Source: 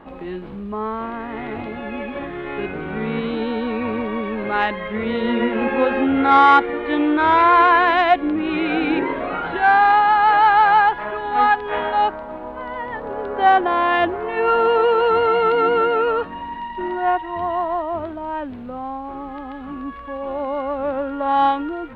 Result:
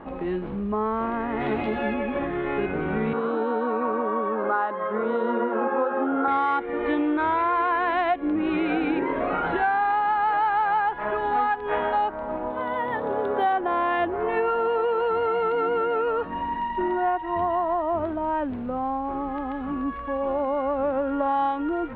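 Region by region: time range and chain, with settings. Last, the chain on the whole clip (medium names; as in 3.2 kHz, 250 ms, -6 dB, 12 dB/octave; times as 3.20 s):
1.40–1.94 s: treble shelf 3.1 kHz +12 dB + doubling 14 ms -4 dB
3.13–6.28 s: high-pass 330 Hz + resonant high shelf 1.7 kHz -8 dB, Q 3
12.50–13.53 s: high-pass 76 Hz 24 dB/octave + peaking EQ 3.6 kHz +12 dB 0.29 oct + decimation joined by straight lines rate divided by 3×
whole clip: treble shelf 2.8 kHz -9.5 dB; compression 6:1, threshold -24 dBFS; tone controls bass -1 dB, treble -4 dB; trim +3 dB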